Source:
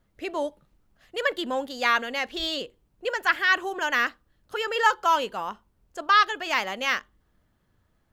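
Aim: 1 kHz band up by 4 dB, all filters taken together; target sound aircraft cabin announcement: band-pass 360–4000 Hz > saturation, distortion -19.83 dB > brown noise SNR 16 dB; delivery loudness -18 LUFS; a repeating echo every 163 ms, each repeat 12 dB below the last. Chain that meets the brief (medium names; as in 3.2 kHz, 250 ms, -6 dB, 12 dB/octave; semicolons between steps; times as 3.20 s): band-pass 360–4000 Hz; peaking EQ 1 kHz +5 dB; feedback delay 163 ms, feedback 25%, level -12 dB; saturation -8.5 dBFS; brown noise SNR 16 dB; trim +6 dB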